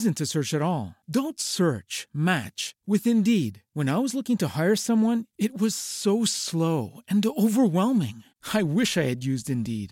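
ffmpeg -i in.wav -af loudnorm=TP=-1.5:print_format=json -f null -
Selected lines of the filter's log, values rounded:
"input_i" : "-25.1",
"input_tp" : "-10.6",
"input_lra" : "1.4",
"input_thresh" : "-35.2",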